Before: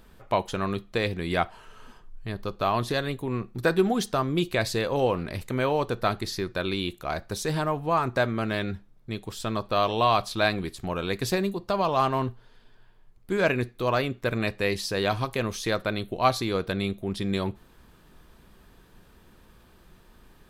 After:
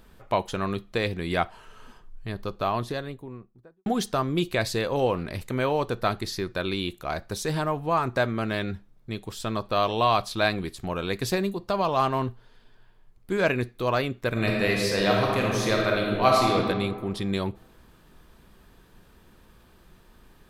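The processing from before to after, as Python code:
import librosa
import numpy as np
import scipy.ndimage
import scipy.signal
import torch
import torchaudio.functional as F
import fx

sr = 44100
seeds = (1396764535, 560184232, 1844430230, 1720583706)

y = fx.studio_fade_out(x, sr, start_s=2.38, length_s=1.48)
y = fx.reverb_throw(y, sr, start_s=14.31, length_s=2.24, rt60_s=1.7, drr_db=-2.0)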